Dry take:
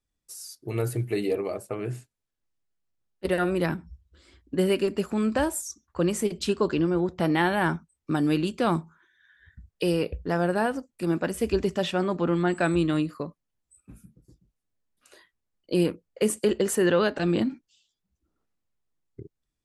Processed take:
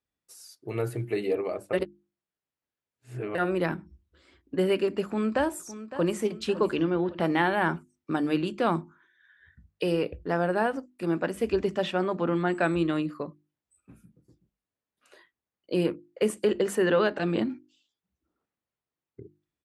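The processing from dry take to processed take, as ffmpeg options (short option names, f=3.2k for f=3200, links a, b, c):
-filter_complex "[0:a]asplit=2[a][b];[b]afade=t=in:st=5.03:d=0.01,afade=t=out:st=6.14:d=0.01,aecho=0:1:560|1120|1680|2240:0.211349|0.0845396|0.0338158|0.0135263[c];[a][c]amix=inputs=2:normalize=0,asettb=1/sr,asplit=3[d][e][f];[d]atrim=end=6.764[g];[e]atrim=start=6.76:end=7.2,asetpts=PTS-STARTPTS,afade=t=in:d=0.004:c=qsin,afade=t=out:st=0.436:d=0.004:c=qsin,lowpass=f=3.5k:t=q:w=2[h];[f]atrim=start=7.196[i];[g][h]acrossfade=d=0.004:c1=hsin:c2=qsin[j];[j][i]acrossfade=d=0.004:c1=qsin:c2=hsin,asplit=3[k][l][m];[k]atrim=end=1.732[n];[l]atrim=start=1.728:end=3.352,asetpts=PTS-STARTPTS,areverse[o];[m]atrim=start=3.348[p];[n][o]acrossfade=d=0.004:c1=hsin:c2=hsin[q];[q][p]acrossfade=d=0.004:c1=hsin:c2=hsin,highpass=72,bass=f=250:g=-4,treble=f=4k:g=-9,bandreject=f=50:t=h:w=6,bandreject=f=100:t=h:w=6,bandreject=f=150:t=h:w=6,bandreject=f=200:t=h:w=6,bandreject=f=250:t=h:w=6,bandreject=f=300:t=h:w=6,bandreject=f=350:t=h:w=6"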